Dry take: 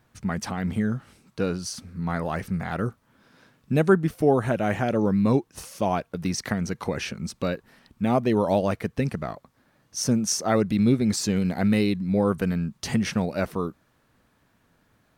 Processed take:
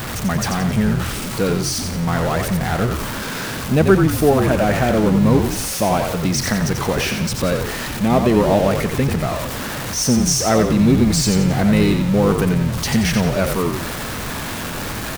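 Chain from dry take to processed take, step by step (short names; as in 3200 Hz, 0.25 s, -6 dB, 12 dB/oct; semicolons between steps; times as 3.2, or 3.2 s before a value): zero-crossing step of -25.5 dBFS; frequency-shifting echo 89 ms, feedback 44%, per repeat -47 Hz, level -5.5 dB; gain +4 dB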